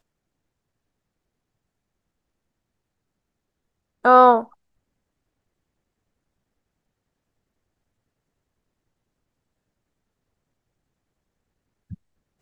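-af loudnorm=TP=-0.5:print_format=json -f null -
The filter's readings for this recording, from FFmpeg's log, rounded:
"input_i" : "-15.3",
"input_tp" : "-2.3",
"input_lra" : "0.0",
"input_thresh" : "-29.1",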